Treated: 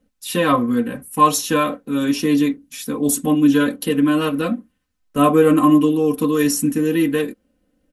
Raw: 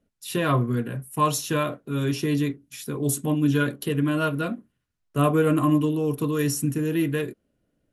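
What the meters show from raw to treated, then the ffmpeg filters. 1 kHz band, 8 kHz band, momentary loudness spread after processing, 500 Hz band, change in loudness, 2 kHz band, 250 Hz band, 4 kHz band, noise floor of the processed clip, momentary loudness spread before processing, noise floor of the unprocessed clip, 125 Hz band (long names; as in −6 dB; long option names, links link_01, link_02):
+8.5 dB, +7.0 dB, 11 LU, +7.0 dB, +7.0 dB, +5.0 dB, +8.0 dB, +7.0 dB, −69 dBFS, 10 LU, −75 dBFS, −2.5 dB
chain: -af "aecho=1:1:3.9:0.83,volume=4.5dB"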